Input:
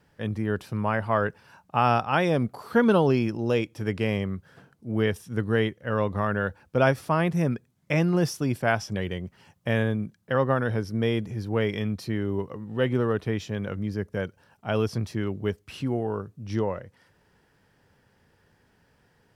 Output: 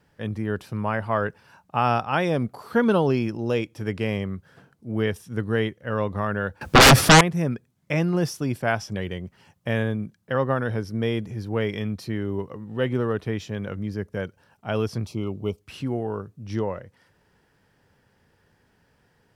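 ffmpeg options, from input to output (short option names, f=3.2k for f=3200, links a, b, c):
-filter_complex "[0:a]asettb=1/sr,asplit=3[a][b][c];[a]atrim=end=6.614[d];[b]atrim=start=6.61:end=7.21,asetpts=PTS-STARTPTS,afade=t=in:d=0.004:c=qsin,afade=t=out:st=0.596:d=0.004:c=qsin,aeval=exprs='0.422*sin(PI/2*8.91*val(0)/0.422)':c=same[e];[c]atrim=start=7.206[f];[d][e]acrossfade=d=0.004:c1=hsin:c2=qsin[g];[g][f]acrossfade=d=0.004:c1=qsin:c2=hsin,asettb=1/sr,asplit=3[h][i][j];[h]atrim=end=15.064[k];[i]atrim=start=15.06:end=15.61,asetpts=PTS-STARTPTS,afade=t=in:d=0.004:c=qsin,afade=t=out:st=0.546:d=0.004:c=qsin,asuperstop=centerf=1700:order=8:qfactor=2.1[l];[j]atrim=start=15.606[m];[k][l]acrossfade=d=0.004:c1=hsin:c2=qsin[n];[n][m]acrossfade=d=0.004:c1=qsin:c2=hsin"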